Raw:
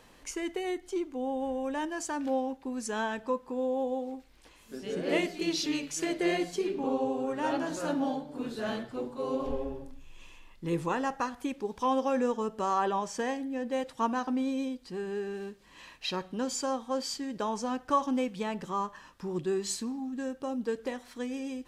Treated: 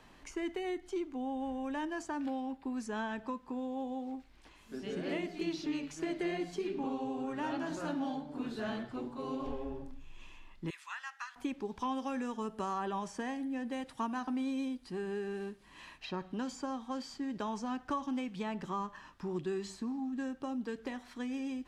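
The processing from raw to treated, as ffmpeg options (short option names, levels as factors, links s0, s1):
-filter_complex "[0:a]asettb=1/sr,asplit=3[s0][s1][s2];[s0]atrim=end=2.254[s3];[s1]atrim=start=2.25:end=2.76,asetpts=PTS-STARTPTS,afade=t=in:d=0.004:c=qsin,afade=t=out:st=0.506:d=0.004:c=qsin,bandreject=f=6100:w=5.7[s4];[s2]atrim=start=2.756[s5];[s3][s4]acrossfade=d=0.004:c1=hsin:c2=qsin[s6];[s6][s5]acrossfade=d=0.004:c1=qsin:c2=hsin,asettb=1/sr,asplit=3[s7][s8][s9];[s7]atrim=end=10.704[s10];[s8]atrim=start=10.7:end=11.36,asetpts=PTS-STARTPTS,afade=t=in:d=0.004:c=qsin,afade=t=out:st=0.656:d=0.004:c=qsin,highpass=f=1500:w=0.5412,highpass=f=1500:w=1.3066[s11];[s9]atrim=start=11.356[s12];[s10][s11]acrossfade=d=0.004:c1=hsin:c2=qsin[s13];[s13][s12]acrossfade=d=0.004:c1=qsin:c2=hsin,asettb=1/sr,asplit=3[s14][s15][s16];[s14]atrim=end=11.954[s17];[s15]atrim=start=11.95:end=15.98,asetpts=PTS-STARTPTS,afade=t=in:d=0.004:c=qsin,afade=t=out:st=4.026:d=0.004:c=qsin,equalizer=f=10000:w=2.6:g=11[s18];[s16]atrim=start=15.976[s19];[s17][s18]acrossfade=d=0.004:c1=hsin:c2=qsin[s20];[s20][s19]acrossfade=d=0.004:c1=qsin:c2=hsin,acrossover=split=290|1600[s21][s22][s23];[s21]acompressor=threshold=0.0112:ratio=4[s24];[s22]acompressor=threshold=0.0158:ratio=4[s25];[s23]acompressor=threshold=0.00631:ratio=4[s26];[s24][s25][s26]amix=inputs=3:normalize=0,lowpass=f=3500:p=1,equalizer=f=500:t=o:w=0.29:g=-9"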